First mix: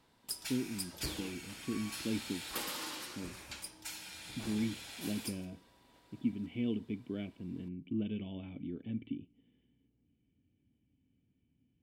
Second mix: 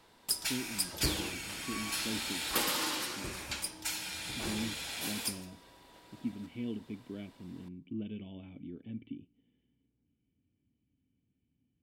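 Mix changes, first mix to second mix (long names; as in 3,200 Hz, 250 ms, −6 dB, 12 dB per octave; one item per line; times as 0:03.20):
speech −3.5 dB
background +8.0 dB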